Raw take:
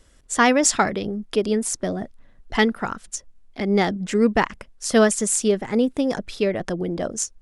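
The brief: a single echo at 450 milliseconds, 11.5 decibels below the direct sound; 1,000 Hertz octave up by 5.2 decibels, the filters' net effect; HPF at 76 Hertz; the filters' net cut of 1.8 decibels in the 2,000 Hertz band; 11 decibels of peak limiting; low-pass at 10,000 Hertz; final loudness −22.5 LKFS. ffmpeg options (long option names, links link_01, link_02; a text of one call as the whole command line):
ffmpeg -i in.wav -af "highpass=76,lowpass=10000,equalizer=frequency=1000:width_type=o:gain=8,equalizer=frequency=2000:width_type=o:gain=-5,alimiter=limit=-12dB:level=0:latency=1,aecho=1:1:450:0.266,volume=1dB" out.wav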